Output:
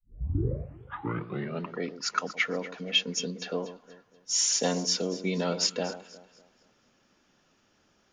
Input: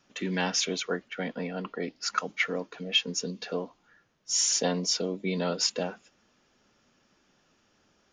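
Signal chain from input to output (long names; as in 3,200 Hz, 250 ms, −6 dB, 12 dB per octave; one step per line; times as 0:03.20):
turntable start at the beginning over 1.75 s
on a send: delay that swaps between a low-pass and a high-pass 120 ms, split 1,200 Hz, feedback 59%, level −12 dB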